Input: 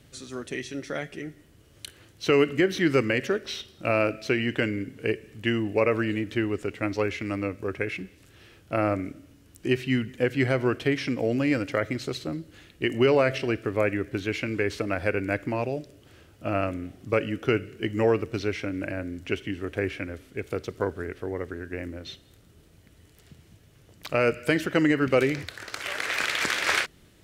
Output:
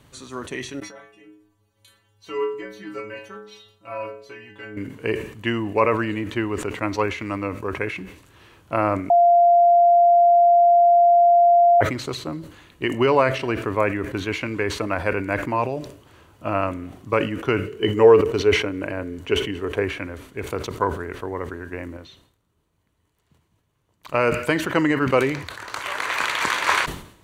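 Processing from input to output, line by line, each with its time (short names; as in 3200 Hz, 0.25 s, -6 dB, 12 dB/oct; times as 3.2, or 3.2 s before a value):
0.8–4.77 metallic resonator 100 Hz, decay 0.8 s, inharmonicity 0.008
9.1–11.81 bleep 694 Hz -15 dBFS
17.66–19.82 small resonant body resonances 430/3000 Hz, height 13 dB -> 9 dB
21.97–24.23 upward expander, over -54 dBFS
whole clip: bell 1000 Hz +13.5 dB 0.52 oct; notch 5200 Hz, Q 9.9; sustainer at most 94 dB/s; gain +1 dB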